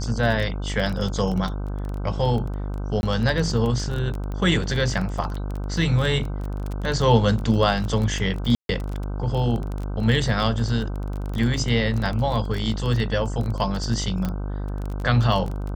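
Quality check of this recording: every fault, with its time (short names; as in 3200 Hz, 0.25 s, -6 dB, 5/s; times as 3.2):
buzz 50 Hz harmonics 31 -28 dBFS
crackle 17/s -26 dBFS
3.01–3.03 gap 21 ms
8.55–8.69 gap 0.142 s
14.25 pop -14 dBFS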